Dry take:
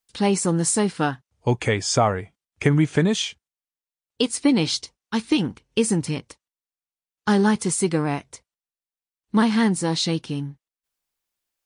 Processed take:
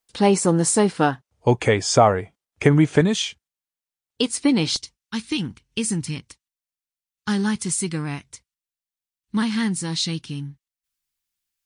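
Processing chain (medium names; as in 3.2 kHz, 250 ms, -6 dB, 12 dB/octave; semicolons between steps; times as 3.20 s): peaking EQ 580 Hz +4.5 dB 1.9 oct, from 3.01 s -2.5 dB, from 4.76 s -13.5 dB; trim +1 dB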